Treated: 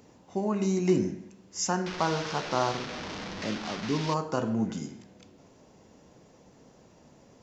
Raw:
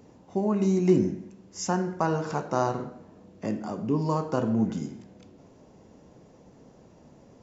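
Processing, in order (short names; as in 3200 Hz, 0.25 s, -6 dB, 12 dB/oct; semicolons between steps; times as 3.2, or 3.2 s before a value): 1.86–4.14 delta modulation 32 kbps, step -30 dBFS; tilt shelf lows -4 dB, about 1100 Hz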